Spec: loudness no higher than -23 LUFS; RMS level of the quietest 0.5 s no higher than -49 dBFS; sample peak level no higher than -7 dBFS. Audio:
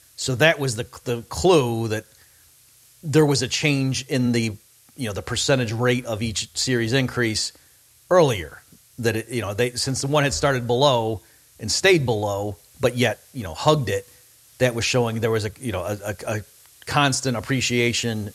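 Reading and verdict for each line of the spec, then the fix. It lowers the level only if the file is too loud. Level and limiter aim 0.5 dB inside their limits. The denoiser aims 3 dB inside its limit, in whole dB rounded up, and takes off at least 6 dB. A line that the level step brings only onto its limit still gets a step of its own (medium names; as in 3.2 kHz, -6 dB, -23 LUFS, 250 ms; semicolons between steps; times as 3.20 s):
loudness -22.0 LUFS: fail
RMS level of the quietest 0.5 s -55 dBFS: pass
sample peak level -4.0 dBFS: fail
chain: trim -1.5 dB; peak limiter -7.5 dBFS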